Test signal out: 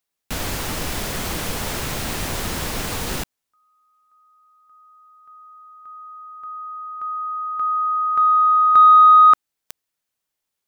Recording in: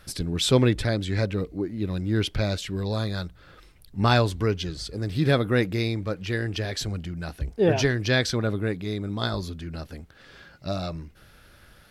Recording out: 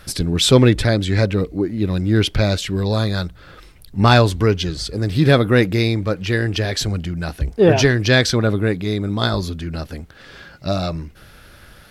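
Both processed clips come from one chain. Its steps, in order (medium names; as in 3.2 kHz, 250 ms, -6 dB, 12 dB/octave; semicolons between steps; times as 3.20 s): saturation -8 dBFS; trim +8.5 dB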